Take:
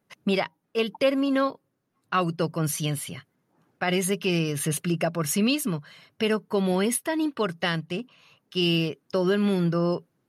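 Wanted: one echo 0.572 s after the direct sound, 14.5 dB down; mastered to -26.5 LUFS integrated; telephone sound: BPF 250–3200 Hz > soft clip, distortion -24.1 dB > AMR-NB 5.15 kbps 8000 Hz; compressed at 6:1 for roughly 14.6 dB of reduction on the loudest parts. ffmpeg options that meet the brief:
-af "acompressor=threshold=-33dB:ratio=6,highpass=250,lowpass=3.2k,aecho=1:1:572:0.188,asoftclip=threshold=-23.5dB,volume=14.5dB" -ar 8000 -c:a libopencore_amrnb -b:a 5150

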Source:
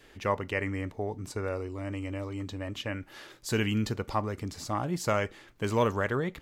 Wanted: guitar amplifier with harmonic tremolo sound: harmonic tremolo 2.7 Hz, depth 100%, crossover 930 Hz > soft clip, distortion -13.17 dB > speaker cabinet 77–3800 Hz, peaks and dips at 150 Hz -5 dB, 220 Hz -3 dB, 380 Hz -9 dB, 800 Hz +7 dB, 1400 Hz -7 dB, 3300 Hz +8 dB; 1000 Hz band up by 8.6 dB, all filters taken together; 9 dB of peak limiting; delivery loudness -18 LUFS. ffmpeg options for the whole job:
-filter_complex "[0:a]equalizer=f=1k:t=o:g=8.5,alimiter=limit=-18dB:level=0:latency=1,acrossover=split=930[a][b];[a]aeval=exprs='val(0)*(1-1/2+1/2*cos(2*PI*2.7*n/s))':c=same[c];[b]aeval=exprs='val(0)*(1-1/2-1/2*cos(2*PI*2.7*n/s))':c=same[d];[c][d]amix=inputs=2:normalize=0,asoftclip=threshold=-30.5dB,highpass=77,equalizer=f=150:t=q:w=4:g=-5,equalizer=f=220:t=q:w=4:g=-3,equalizer=f=380:t=q:w=4:g=-9,equalizer=f=800:t=q:w=4:g=7,equalizer=f=1.4k:t=q:w=4:g=-7,equalizer=f=3.3k:t=q:w=4:g=8,lowpass=f=3.8k:w=0.5412,lowpass=f=3.8k:w=1.3066,volume=22.5dB"

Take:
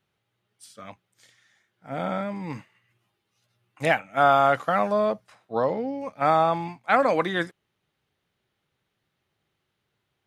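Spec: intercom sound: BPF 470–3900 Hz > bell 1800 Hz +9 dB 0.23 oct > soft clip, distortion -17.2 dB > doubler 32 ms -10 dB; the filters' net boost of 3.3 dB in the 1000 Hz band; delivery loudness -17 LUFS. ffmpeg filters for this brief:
-filter_complex "[0:a]highpass=470,lowpass=3.9k,equalizer=f=1k:t=o:g=5,equalizer=f=1.8k:t=o:w=0.23:g=9,asoftclip=threshold=-9.5dB,asplit=2[a][b];[b]adelay=32,volume=-10dB[c];[a][c]amix=inputs=2:normalize=0,volume=5.5dB"

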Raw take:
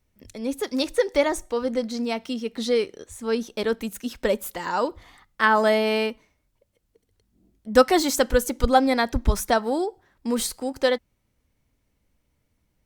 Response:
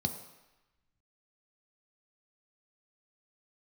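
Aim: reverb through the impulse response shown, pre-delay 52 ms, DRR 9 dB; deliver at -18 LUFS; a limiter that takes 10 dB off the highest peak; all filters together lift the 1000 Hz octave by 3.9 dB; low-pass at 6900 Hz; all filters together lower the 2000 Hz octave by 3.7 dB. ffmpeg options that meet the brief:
-filter_complex "[0:a]lowpass=6.9k,equalizer=f=1k:t=o:g=7,equalizer=f=2k:t=o:g=-8,alimiter=limit=-12dB:level=0:latency=1,asplit=2[a][b];[1:a]atrim=start_sample=2205,adelay=52[c];[b][c]afir=irnorm=-1:irlink=0,volume=-12.5dB[d];[a][d]amix=inputs=2:normalize=0,volume=6dB"

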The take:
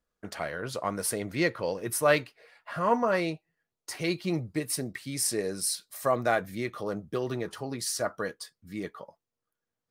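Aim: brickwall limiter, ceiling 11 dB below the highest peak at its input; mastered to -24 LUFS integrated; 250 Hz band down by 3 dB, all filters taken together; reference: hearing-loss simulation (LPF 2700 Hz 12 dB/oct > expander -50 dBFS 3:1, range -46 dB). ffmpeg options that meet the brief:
-af "equalizer=f=250:t=o:g=-4.5,alimiter=limit=-20.5dB:level=0:latency=1,lowpass=2.7k,agate=range=-46dB:threshold=-50dB:ratio=3,volume=11dB"

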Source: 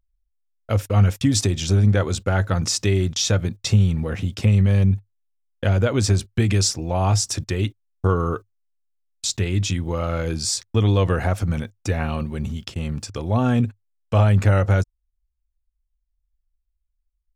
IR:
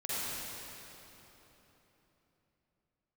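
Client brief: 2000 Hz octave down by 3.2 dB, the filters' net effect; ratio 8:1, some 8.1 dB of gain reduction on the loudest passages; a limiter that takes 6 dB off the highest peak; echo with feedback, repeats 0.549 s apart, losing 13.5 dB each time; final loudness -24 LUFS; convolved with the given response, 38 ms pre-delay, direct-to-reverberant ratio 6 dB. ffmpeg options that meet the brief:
-filter_complex "[0:a]equalizer=f=2k:t=o:g=-4.5,acompressor=threshold=-20dB:ratio=8,alimiter=limit=-17.5dB:level=0:latency=1,aecho=1:1:549|1098:0.211|0.0444,asplit=2[a][b];[1:a]atrim=start_sample=2205,adelay=38[c];[b][c]afir=irnorm=-1:irlink=0,volume=-12dB[d];[a][d]amix=inputs=2:normalize=0,volume=2.5dB"

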